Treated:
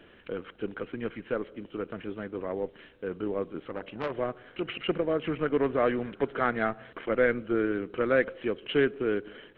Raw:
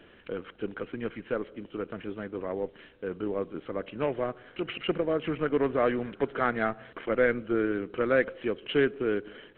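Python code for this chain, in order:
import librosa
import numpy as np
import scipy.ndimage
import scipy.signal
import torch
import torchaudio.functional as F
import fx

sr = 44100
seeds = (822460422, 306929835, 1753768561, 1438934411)

y = fx.transformer_sat(x, sr, knee_hz=1400.0, at=(3.66, 4.14))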